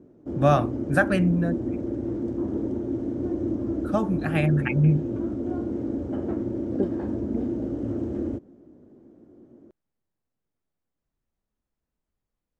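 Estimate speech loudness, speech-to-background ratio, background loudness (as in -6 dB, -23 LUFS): -24.0 LUFS, 5.5 dB, -29.5 LUFS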